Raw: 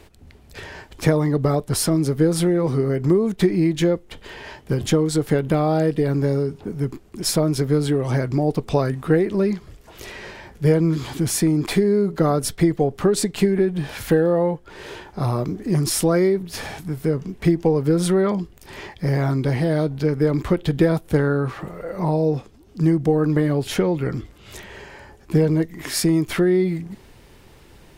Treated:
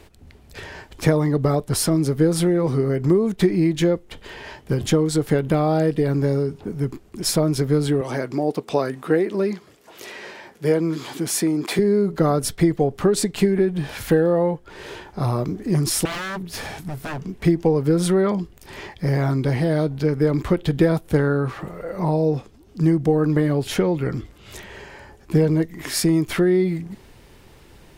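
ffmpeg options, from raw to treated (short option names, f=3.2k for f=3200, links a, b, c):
-filter_complex "[0:a]asettb=1/sr,asplit=3[a][b][c];[a]atrim=end=8.014[d];[b]atrim=start=8.01:end=11.79,asetpts=PTS-STARTPTS,afade=t=in:d=0.004:c=qsin,afade=t=out:st=3.776:d=0.004:c=qsin,highpass=240[e];[c]atrim=start=11.786[f];[d][e]acrossfade=d=0.004:c1=hsin:c2=qsin[g];[g][f]acrossfade=d=0.004:c1=qsin:c2=hsin,asettb=1/sr,asplit=3[h][i][j];[h]atrim=end=16.054[k];[i]atrim=start=16.05:end=17.23,asetpts=PTS-STARTPTS,afade=t=in:d=0.004:c=qsin,afade=t=out:st=1.176:d=0.004:c=qsin,aeval=exprs='0.0668*(abs(mod(val(0)/0.0668+3,4)-2)-1)':c=same[l];[j]atrim=start=17.226[m];[k][l]acrossfade=d=0.004:c1=hsin:c2=qsin[n];[n][m]acrossfade=d=0.004:c1=qsin:c2=hsin"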